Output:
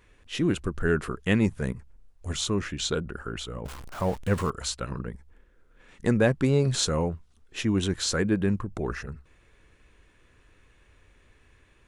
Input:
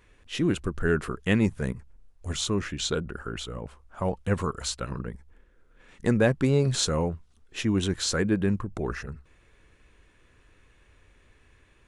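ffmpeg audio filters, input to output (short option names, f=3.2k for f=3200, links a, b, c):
-filter_complex "[0:a]asettb=1/sr,asplit=3[a][b][c];[a]atrim=end=3.654[d];[b]atrim=start=3.65:end=4.5,asetpts=PTS-STARTPTS,afade=t=in:d=0.004:c=qsin,afade=t=out:st=0.846:d=0.004:c=qsin,aeval=exprs='val(0)+0.5*0.0158*sgn(val(0))':c=same[e];[c]atrim=start=4.496[f];[d][e]acrossfade=d=0.004:c1=hsin:c2=qsin[g];[g][f]acrossfade=d=0.004:c1=qsin:c2=hsin"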